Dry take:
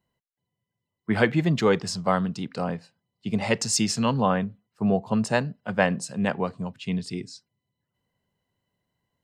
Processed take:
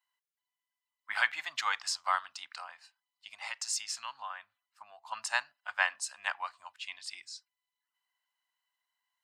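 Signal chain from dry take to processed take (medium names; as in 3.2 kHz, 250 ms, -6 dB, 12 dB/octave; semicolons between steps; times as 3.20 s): 2.57–5.05 s: compression, threshold -29 dBFS, peak gain reduction 11.5 dB; inverse Chebyshev high-pass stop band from 470 Hz, stop band 40 dB; trim -1.5 dB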